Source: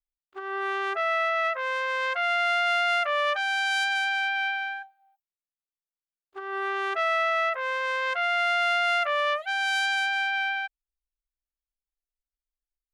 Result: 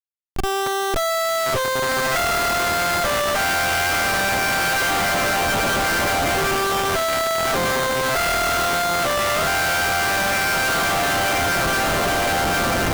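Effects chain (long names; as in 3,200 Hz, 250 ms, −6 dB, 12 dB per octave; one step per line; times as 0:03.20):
feedback delay with all-pass diffusion 1,029 ms, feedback 71%, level −7.5 dB
comparator with hysteresis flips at −34.5 dBFS
level +7 dB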